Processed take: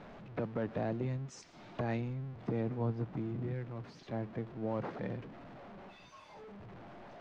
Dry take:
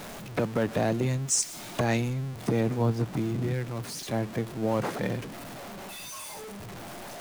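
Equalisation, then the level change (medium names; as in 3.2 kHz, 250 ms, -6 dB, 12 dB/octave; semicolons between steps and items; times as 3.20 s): dynamic bell 5 kHz, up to +3 dB, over -47 dBFS, Q 1.4; distance through air 180 m; treble shelf 3.6 kHz -12 dB; -8.5 dB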